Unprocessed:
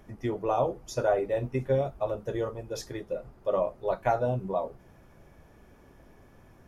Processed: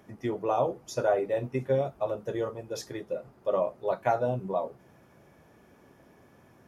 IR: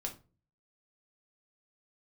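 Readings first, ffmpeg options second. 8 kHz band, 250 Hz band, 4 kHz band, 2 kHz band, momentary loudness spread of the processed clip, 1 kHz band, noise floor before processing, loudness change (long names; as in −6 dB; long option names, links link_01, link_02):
0.0 dB, −0.5 dB, 0.0 dB, 0.0 dB, 9 LU, 0.0 dB, −56 dBFS, 0.0 dB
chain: -af "highpass=120"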